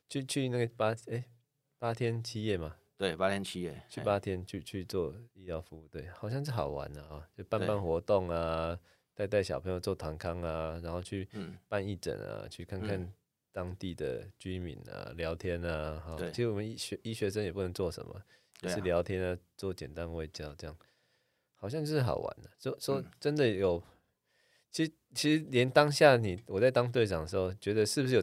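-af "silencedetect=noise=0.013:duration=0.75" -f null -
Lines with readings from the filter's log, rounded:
silence_start: 20.70
silence_end: 21.64 | silence_duration: 0.94
silence_start: 23.79
silence_end: 24.75 | silence_duration: 0.96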